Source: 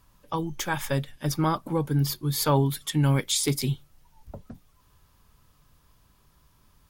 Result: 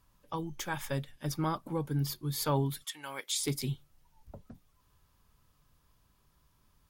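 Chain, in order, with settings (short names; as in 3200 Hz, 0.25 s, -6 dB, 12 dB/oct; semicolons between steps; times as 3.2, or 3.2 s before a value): 2.83–3.38 HPF 1300 Hz -> 430 Hz 12 dB/oct; gain -7.5 dB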